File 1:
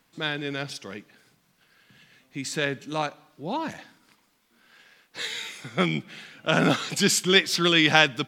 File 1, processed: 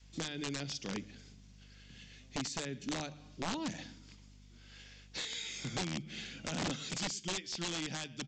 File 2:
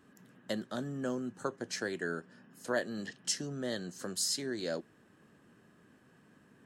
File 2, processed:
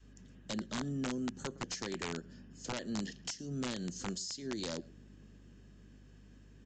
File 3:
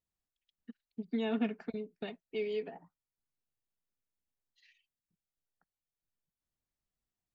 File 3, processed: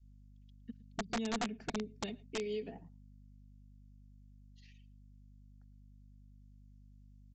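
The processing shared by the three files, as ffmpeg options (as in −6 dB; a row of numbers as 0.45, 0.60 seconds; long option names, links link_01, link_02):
-filter_complex "[0:a]bandreject=frequency=50:width_type=h:width=6,bandreject=frequency=100:width_type=h:width=6,bandreject=frequency=150:width_type=h:width=6,acrossover=split=1500[link_01][link_02];[link_02]acontrast=38[link_03];[link_01][link_03]amix=inputs=2:normalize=0,aeval=exprs='val(0)+0.00126*(sin(2*PI*50*n/s)+sin(2*PI*2*50*n/s)/2+sin(2*PI*3*50*n/s)/3+sin(2*PI*4*50*n/s)/4+sin(2*PI*5*50*n/s)/5)':channel_layout=same,equalizer=frequency=1300:width_type=o:width=2.2:gain=-12,acompressor=threshold=-38dB:ratio=12,asplit=2[link_04][link_05];[link_05]adelay=110.8,volume=-22dB,highshelf=frequency=4000:gain=-2.49[link_06];[link_04][link_06]amix=inputs=2:normalize=0,adynamicequalizer=threshold=0.00158:dfrequency=210:dqfactor=0.75:tfrequency=210:tqfactor=0.75:attack=5:release=100:ratio=0.375:range=2.5:mode=boostabove:tftype=bell,bandreject=frequency=4000:width=20,aresample=16000,aeval=exprs='(mod(37.6*val(0)+1,2)-1)/37.6':channel_layout=same,aresample=44100,volume=1.5dB"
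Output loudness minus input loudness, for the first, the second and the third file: −15.0, −3.0, −3.0 LU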